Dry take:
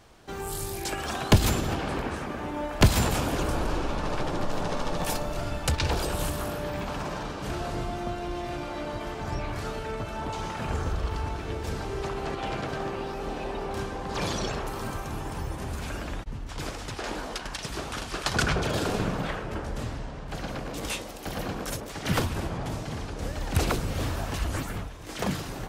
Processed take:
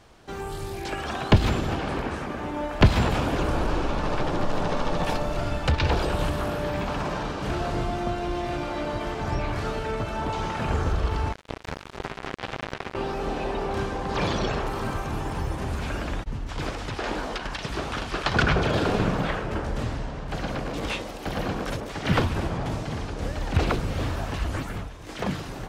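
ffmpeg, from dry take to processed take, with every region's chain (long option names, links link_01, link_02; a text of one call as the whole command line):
ffmpeg -i in.wav -filter_complex "[0:a]asettb=1/sr,asplit=3[link_01][link_02][link_03];[link_01]atrim=end=11.324[link_04];[link_02]atrim=start=11.32:end=12.95,asetpts=PTS-STARTPTS,afade=type=in:duration=0.004:curve=qsin,afade=type=out:start_time=1.626:duration=0.004:curve=qsin,highshelf=frequency=11000:gain=-2.5,acrusher=bits=3:mix=0:aa=0.5[link_05];[link_03]atrim=start=12.946[link_06];[link_04][link_05]acrossfade=duration=0.004:curve1=hsin:curve2=qsin[link_07];[link_07][link_06]acrossfade=duration=0.004:curve1=qsin:curve2=hsin,dynaudnorm=framelen=770:gausssize=9:maxgain=3dB,highshelf=frequency=10000:gain=-8,acrossover=split=4400[link_08][link_09];[link_09]acompressor=threshold=-49dB:ratio=4:attack=1:release=60[link_10];[link_08][link_10]amix=inputs=2:normalize=0,volume=1.5dB" out.wav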